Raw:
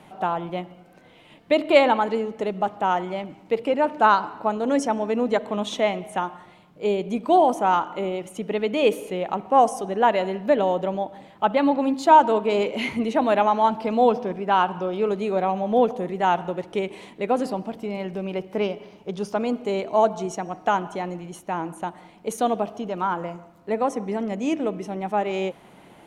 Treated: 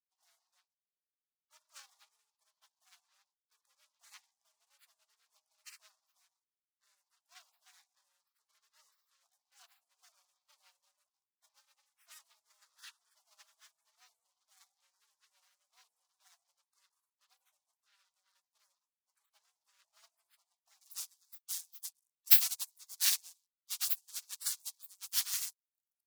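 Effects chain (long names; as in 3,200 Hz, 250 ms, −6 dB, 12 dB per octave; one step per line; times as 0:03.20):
dynamic equaliser 1,900 Hz, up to −4 dB, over −38 dBFS, Q 2.1
double-tracking delay 16 ms −7 dB
leveller curve on the samples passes 5
Butterworth high-pass 1,500 Hz 36 dB per octave
gate on every frequency bin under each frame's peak −20 dB weak
spectral tilt −2 dB per octave, from 0:20.80 +4 dB per octave
expander for the loud parts 2.5 to 1, over −37 dBFS
level −1.5 dB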